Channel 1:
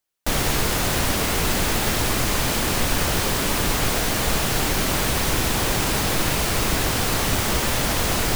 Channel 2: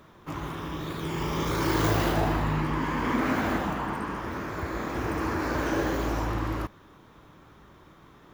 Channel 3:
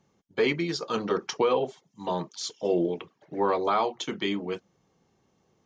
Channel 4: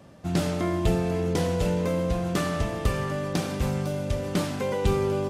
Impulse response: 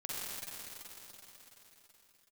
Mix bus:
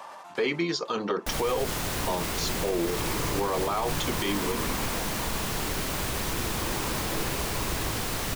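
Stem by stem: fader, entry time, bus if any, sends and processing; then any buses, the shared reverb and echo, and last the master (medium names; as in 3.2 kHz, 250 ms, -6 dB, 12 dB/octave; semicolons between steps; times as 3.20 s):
-9.0 dB, 1.00 s, no send, bit crusher 5-bit
-8.5 dB, 1.40 s, no send, rippled EQ curve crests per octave 0.83, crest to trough 7 dB
+3.0 dB, 0.00 s, no send, bass shelf 130 Hz -11 dB
-19.0 dB, 0.00 s, no send, resonant high-pass 940 Hz, resonance Q 4.9; level flattener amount 100%; auto duck -10 dB, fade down 0.90 s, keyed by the third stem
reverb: none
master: peak limiter -18 dBFS, peak gain reduction 8.5 dB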